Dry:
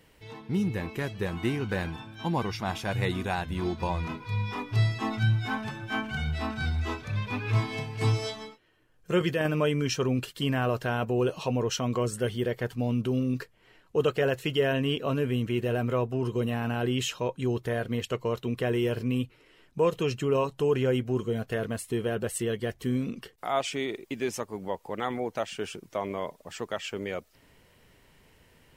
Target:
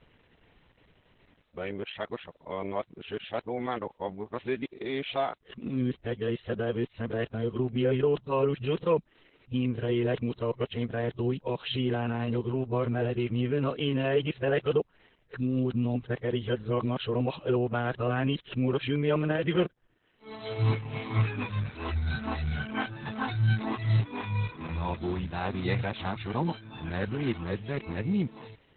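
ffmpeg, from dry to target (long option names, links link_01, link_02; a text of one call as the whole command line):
ffmpeg -i in.wav -af "areverse" -ar 48000 -c:a libopus -b:a 8k out.opus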